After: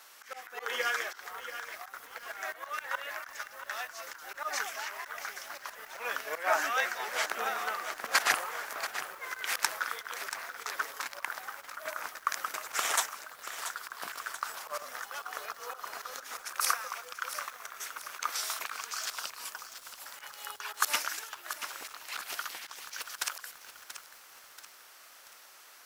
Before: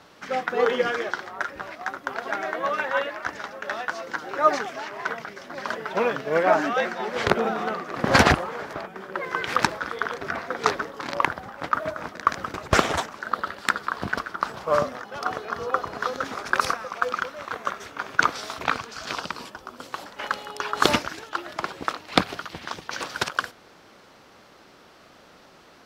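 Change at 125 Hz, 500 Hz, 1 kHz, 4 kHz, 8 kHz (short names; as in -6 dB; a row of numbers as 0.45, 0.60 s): under -30 dB, -16.5 dB, -10.5 dB, -6.0 dB, +2.5 dB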